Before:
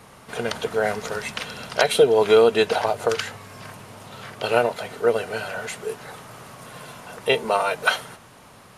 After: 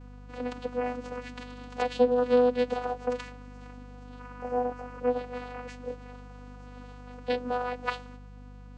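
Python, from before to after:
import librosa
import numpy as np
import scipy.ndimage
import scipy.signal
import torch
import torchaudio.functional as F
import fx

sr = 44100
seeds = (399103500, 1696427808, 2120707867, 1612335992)

y = fx.spec_repair(x, sr, seeds[0], start_s=4.22, length_s=0.76, low_hz=880.0, high_hz=5700.0, source='after')
y = fx.vocoder(y, sr, bands=8, carrier='saw', carrier_hz=247.0)
y = fx.add_hum(y, sr, base_hz=50, snr_db=15)
y = y * librosa.db_to_amplitude(-7.0)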